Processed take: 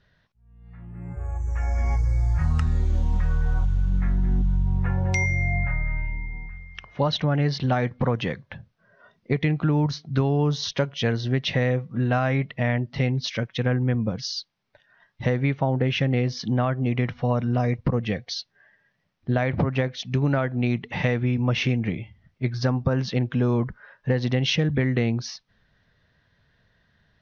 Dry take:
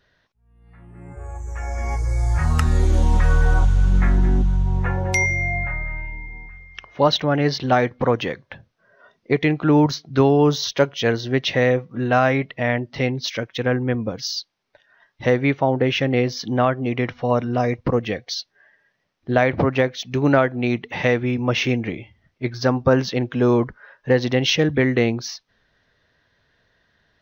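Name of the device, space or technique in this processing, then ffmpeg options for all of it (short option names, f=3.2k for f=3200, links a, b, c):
jukebox: -af "lowpass=6.1k,lowshelf=f=240:t=q:w=1.5:g=6,acompressor=threshold=-16dB:ratio=6,volume=-2.5dB"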